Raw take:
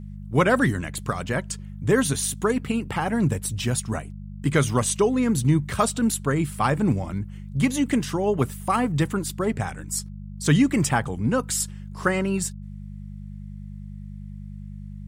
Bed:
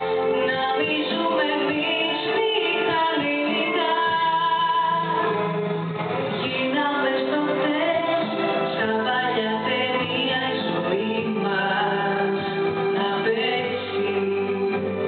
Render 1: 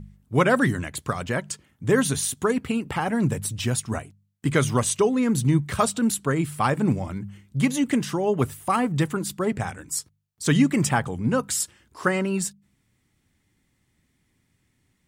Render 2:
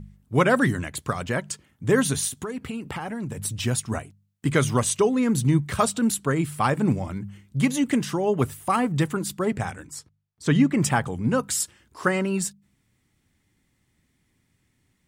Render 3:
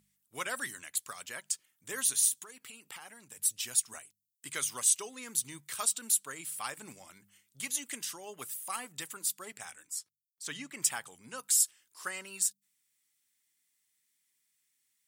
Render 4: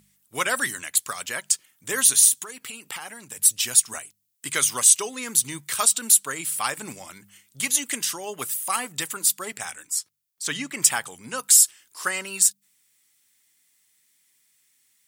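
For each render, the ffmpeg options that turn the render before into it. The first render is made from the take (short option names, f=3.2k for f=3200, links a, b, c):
-af "bandreject=f=50:t=h:w=4,bandreject=f=100:t=h:w=4,bandreject=f=150:t=h:w=4,bandreject=f=200:t=h:w=4"
-filter_complex "[0:a]asettb=1/sr,asplit=3[a][b][c];[a]atrim=end=2.284[d];[b]atrim=start=2.28:end=3.45,asetpts=PTS-STARTPTS,afade=t=in:d=0.004:c=qsin,afade=t=out:st=1.166:d=0.004:c=qsin,acompressor=threshold=-28dB:ratio=6:attack=3.2:release=140:knee=1:detection=peak[e];[c]atrim=start=3.446[f];[d][e]acrossfade=d=0.004:c1=hsin:c2=qsin[g];[g][f]acrossfade=d=0.004:c1=qsin:c2=hsin,asettb=1/sr,asplit=3[h][i][j];[h]atrim=end=9.874[k];[i]atrim=start=9.87:end=10.82,asetpts=PTS-STARTPTS,afade=t=in:d=0.004:c=qsin,afade=t=out:st=0.946:d=0.004:c=qsin,lowpass=f=2.4k:p=1[l];[j]atrim=start=10.816[m];[k][l]acrossfade=d=0.004:c1=hsin:c2=qsin[n];[n][m]acrossfade=d=0.004:c1=qsin:c2=hsin"
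-af "aderivative"
-af "volume=12dB,alimiter=limit=-3dB:level=0:latency=1"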